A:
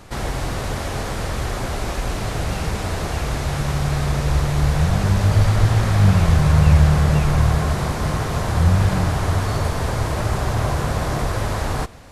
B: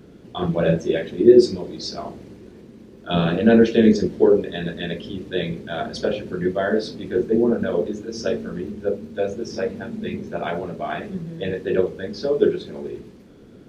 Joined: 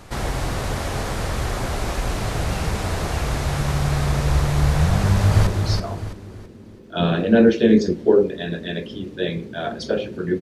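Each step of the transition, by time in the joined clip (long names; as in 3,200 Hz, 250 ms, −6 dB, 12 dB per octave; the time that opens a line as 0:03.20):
A
0:05.01–0:05.47: delay throw 330 ms, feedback 35%, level −5.5 dB
0:05.47: continue with B from 0:01.61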